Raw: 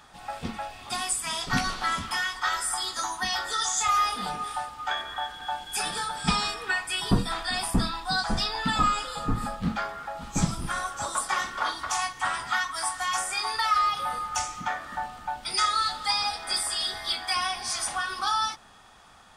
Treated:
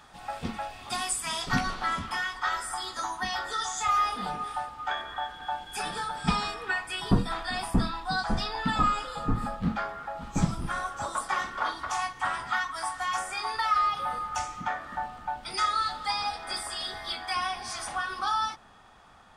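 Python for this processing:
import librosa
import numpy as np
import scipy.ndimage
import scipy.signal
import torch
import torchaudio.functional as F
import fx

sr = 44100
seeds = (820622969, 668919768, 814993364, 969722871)

y = fx.high_shelf(x, sr, hz=3200.0, db=fx.steps((0.0, -2.5), (1.55, -10.0)))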